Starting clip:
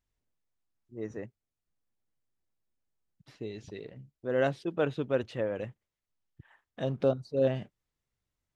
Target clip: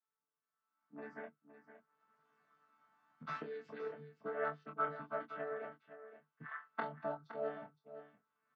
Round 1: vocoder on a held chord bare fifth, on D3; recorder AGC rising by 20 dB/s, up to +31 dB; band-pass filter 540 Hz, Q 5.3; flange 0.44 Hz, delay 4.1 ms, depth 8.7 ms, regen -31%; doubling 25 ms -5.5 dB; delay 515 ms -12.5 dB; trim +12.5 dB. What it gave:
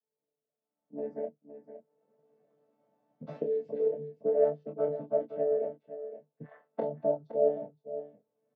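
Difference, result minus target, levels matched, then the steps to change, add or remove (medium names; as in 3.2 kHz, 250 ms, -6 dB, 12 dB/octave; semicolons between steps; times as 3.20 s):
1 kHz band -13.0 dB
change: band-pass filter 1.3 kHz, Q 5.3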